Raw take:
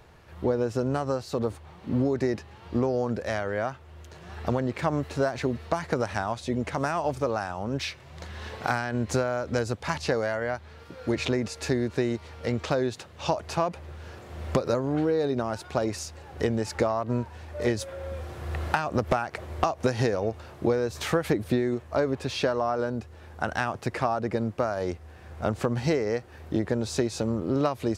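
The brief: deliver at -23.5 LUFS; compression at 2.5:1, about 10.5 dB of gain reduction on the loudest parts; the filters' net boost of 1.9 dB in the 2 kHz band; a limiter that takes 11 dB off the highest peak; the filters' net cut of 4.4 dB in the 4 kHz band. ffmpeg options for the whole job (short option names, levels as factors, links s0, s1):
-af "equalizer=f=2000:t=o:g=4,equalizer=f=4000:t=o:g=-7,acompressor=threshold=0.0158:ratio=2.5,volume=6.31,alimiter=limit=0.266:level=0:latency=1"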